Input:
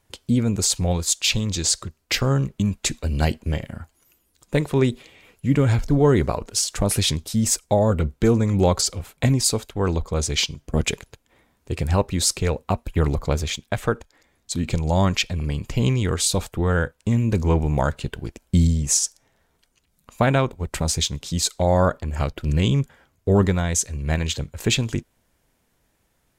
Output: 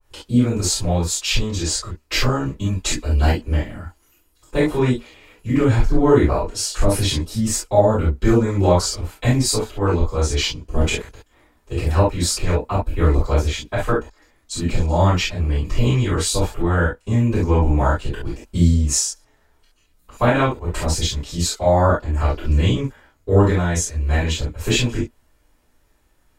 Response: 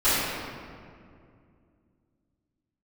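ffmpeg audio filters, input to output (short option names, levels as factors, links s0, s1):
-filter_complex "[1:a]atrim=start_sample=2205,atrim=end_sample=3528[s0];[0:a][s0]afir=irnorm=-1:irlink=0,adynamicequalizer=threshold=0.0501:dfrequency=2000:dqfactor=0.7:tfrequency=2000:tqfactor=0.7:attack=5:release=100:ratio=0.375:range=2:mode=cutabove:tftype=highshelf,volume=0.299"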